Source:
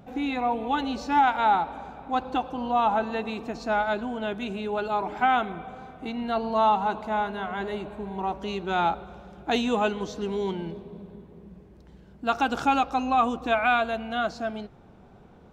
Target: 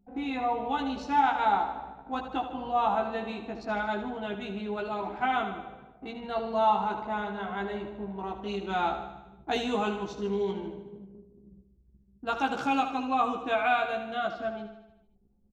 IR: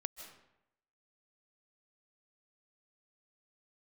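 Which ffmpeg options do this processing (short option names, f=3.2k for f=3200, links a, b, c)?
-filter_complex "[0:a]asettb=1/sr,asplit=3[a][b][c];[a]atrim=end=12.374[d];[b]atrim=start=12.37:end=14.37,asetpts=PTS-STARTPTS,afade=t=in:d=0.004:c=qsin,afade=t=out:st=1.996:d=0.004:c=qsin,highpass=110[e];[c]atrim=start=14.366[f];[d][e]acrossfade=d=0.004:c1=hsin:c2=qsin[g];[g][f]acrossfade=d=0.004:c1=qsin:c2=hsin,anlmdn=0.631,asplit=2[h][i];[i]adelay=15,volume=-3dB[j];[h][j]amix=inputs=2:normalize=0,asplit=2[k][l];[l]aecho=0:1:76|152|228|304|380|456|532:0.335|0.194|0.113|0.0654|0.0379|0.022|0.0128[m];[k][m]amix=inputs=2:normalize=0,volume=-6dB"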